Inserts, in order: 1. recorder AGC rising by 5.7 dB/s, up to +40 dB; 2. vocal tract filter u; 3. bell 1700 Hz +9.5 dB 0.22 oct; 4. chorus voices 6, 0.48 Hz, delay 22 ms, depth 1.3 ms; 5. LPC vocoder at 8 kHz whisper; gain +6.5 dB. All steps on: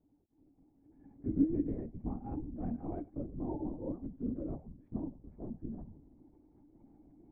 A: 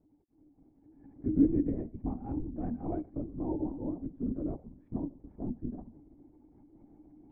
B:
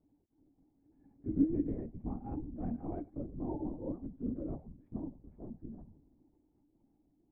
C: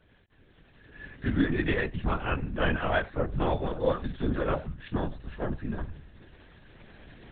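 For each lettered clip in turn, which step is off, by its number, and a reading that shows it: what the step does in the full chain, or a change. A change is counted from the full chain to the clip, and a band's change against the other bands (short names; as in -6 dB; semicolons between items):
4, loudness change +4.5 LU; 1, momentary loudness spread change +2 LU; 2, 250 Hz band -10.0 dB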